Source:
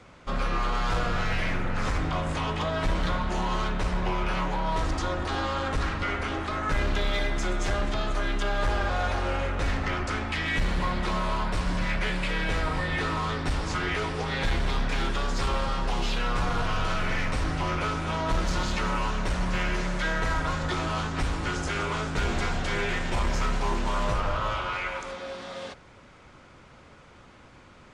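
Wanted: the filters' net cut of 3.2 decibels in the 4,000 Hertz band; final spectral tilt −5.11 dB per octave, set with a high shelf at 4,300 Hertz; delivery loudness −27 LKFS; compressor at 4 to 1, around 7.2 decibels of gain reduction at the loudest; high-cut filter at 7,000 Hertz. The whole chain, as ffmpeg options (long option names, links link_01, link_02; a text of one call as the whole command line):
ffmpeg -i in.wav -af "lowpass=7000,equalizer=frequency=4000:width_type=o:gain=-8.5,highshelf=frequency=4300:gain=8.5,acompressor=threshold=-31dB:ratio=4,volume=8dB" out.wav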